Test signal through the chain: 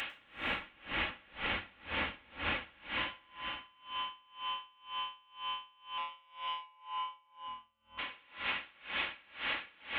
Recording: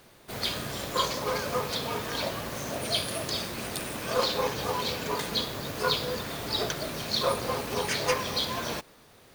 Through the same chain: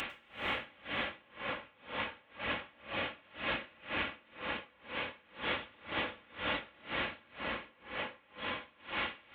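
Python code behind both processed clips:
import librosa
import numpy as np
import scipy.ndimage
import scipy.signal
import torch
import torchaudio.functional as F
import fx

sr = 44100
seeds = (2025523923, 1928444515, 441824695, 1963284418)

y = fx.delta_mod(x, sr, bps=16000, step_db=-35.5)
y = scipy.signal.sosfilt(scipy.signal.butter(2, 44.0, 'highpass', fs=sr, output='sos'), y)
y = fx.tilt_shelf(y, sr, db=-8.5, hz=1400.0)
y = y + 0.47 * np.pad(y, (int(3.6 * sr / 1000.0), 0))[:len(y)]
y = fx.over_compress(y, sr, threshold_db=-39.0, ratio=-0.5)
y = fx.rev_plate(y, sr, seeds[0], rt60_s=3.9, hf_ratio=0.75, predelay_ms=90, drr_db=-3.0)
y = y * 10.0 ** (-30 * (0.5 - 0.5 * np.cos(2.0 * np.pi * 2.0 * np.arange(len(y)) / sr)) / 20.0)
y = F.gain(torch.from_numpy(y), 1.0).numpy()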